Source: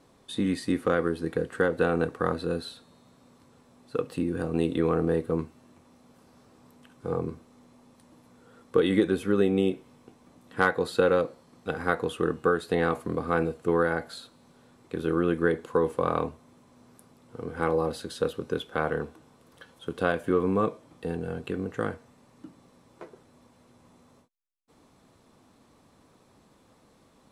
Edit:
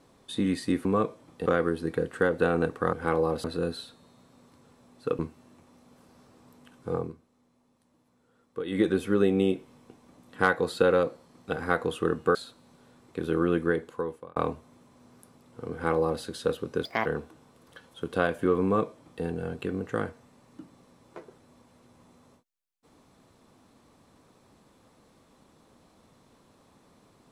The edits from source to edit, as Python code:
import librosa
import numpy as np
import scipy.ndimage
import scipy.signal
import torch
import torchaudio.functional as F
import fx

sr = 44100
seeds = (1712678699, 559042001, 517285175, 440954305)

y = fx.edit(x, sr, fx.cut(start_s=4.07, length_s=1.3),
    fx.fade_down_up(start_s=7.13, length_s=1.91, db=-12.0, fade_s=0.2),
    fx.cut(start_s=12.53, length_s=1.58),
    fx.fade_out_span(start_s=15.32, length_s=0.8),
    fx.duplicate(start_s=17.48, length_s=0.51, to_s=2.32),
    fx.speed_span(start_s=18.61, length_s=0.3, speed=1.43),
    fx.duplicate(start_s=20.48, length_s=0.61, to_s=0.85), tone=tone)